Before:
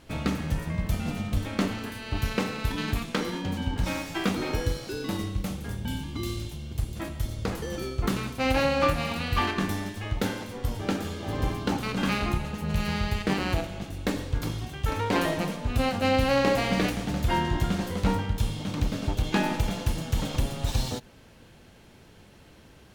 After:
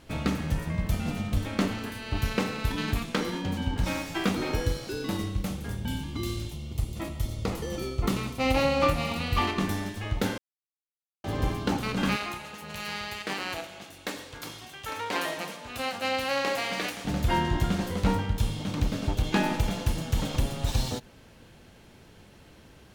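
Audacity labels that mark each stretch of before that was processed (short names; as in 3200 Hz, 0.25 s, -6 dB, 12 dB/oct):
6.510000	9.670000	notch 1600 Hz, Q 5.3
10.380000	11.240000	mute
12.160000	17.050000	HPF 930 Hz 6 dB/oct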